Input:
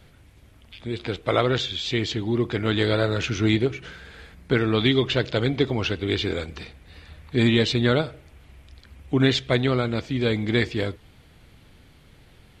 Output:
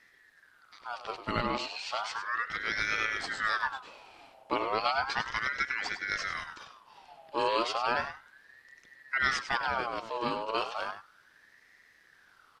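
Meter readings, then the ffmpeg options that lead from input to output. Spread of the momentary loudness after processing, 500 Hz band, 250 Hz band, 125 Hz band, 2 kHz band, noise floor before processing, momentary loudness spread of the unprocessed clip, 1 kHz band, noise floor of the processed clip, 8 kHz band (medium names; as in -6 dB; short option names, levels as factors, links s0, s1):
12 LU, -13.0 dB, -19.5 dB, -25.0 dB, -1.5 dB, -53 dBFS, 12 LU, +2.5 dB, -63 dBFS, -5.0 dB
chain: -af "aecho=1:1:100:0.299,aeval=exprs='val(0)*sin(2*PI*1300*n/s+1300*0.45/0.34*sin(2*PI*0.34*n/s))':c=same,volume=0.447"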